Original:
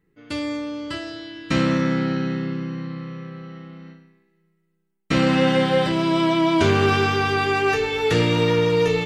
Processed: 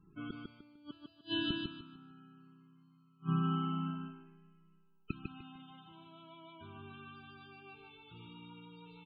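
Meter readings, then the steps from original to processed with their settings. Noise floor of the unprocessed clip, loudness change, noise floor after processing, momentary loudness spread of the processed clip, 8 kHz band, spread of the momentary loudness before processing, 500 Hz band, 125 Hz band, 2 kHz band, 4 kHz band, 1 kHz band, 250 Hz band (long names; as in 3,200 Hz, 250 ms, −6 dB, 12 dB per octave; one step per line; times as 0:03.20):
−69 dBFS, −19.0 dB, −67 dBFS, 21 LU, below −40 dB, 16 LU, −32.0 dB, −17.5 dB, −26.0 dB, −16.5 dB, −22.0 dB, −19.5 dB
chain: low-shelf EQ 69 Hz −6 dB
phaser with its sweep stopped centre 1,900 Hz, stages 6
gate with flip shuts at −29 dBFS, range −38 dB
spectral peaks only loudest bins 32
on a send: repeating echo 150 ms, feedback 28%, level −4 dB
on the sum: level +8 dB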